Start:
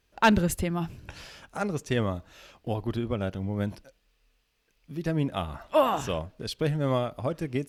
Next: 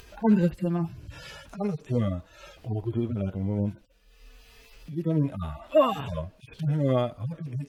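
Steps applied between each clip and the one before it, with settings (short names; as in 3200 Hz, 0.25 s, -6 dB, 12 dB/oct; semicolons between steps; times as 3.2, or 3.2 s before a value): median-filter separation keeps harmonic; upward compressor, threshold -38 dBFS; gain +3 dB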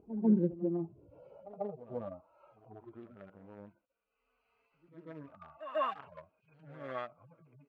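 Wiener smoothing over 25 samples; band-pass sweep 290 Hz -> 1600 Hz, 0.31–3.11; pre-echo 0.143 s -13 dB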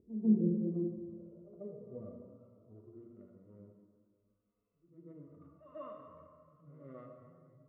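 running mean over 54 samples; plate-style reverb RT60 2 s, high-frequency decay 0.65×, DRR 1.5 dB; gain -3 dB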